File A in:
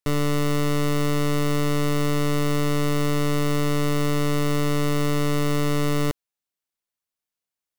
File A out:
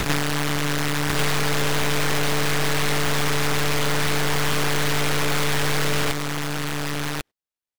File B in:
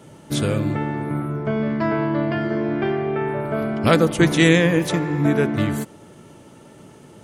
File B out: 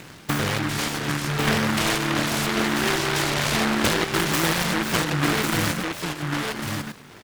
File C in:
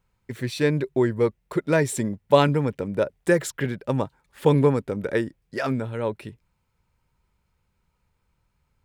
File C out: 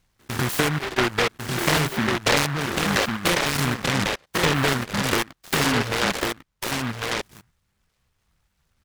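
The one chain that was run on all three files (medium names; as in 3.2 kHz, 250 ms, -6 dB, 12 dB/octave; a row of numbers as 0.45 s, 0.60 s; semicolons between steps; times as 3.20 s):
spectrogram pixelated in time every 100 ms; bass shelf 420 Hz -5.5 dB; reverb removal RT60 1.4 s; in parallel at -4.5 dB: bit crusher 7-bit; on the sum: resampled via 16 kHz; compression 4:1, threshold -30 dBFS; distance through air 110 m; on a send: delay 1098 ms -3.5 dB; on the sum: delay time shaken by noise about 1.3 kHz, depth 0.41 ms; normalise loudness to -23 LUFS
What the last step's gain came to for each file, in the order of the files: +9.0 dB, +7.5 dB, +10.0 dB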